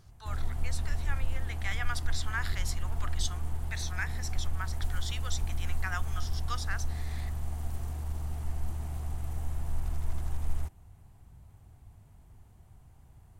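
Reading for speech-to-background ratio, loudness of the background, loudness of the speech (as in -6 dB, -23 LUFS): -3.0 dB, -37.0 LUFS, -40.0 LUFS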